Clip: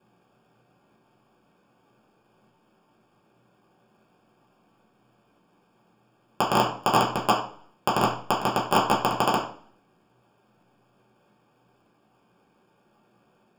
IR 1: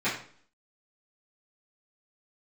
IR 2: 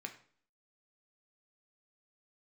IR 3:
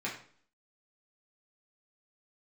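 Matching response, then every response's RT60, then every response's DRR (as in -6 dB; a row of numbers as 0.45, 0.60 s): 3; 0.50, 0.50, 0.50 s; -14.0, 4.0, -6.0 dB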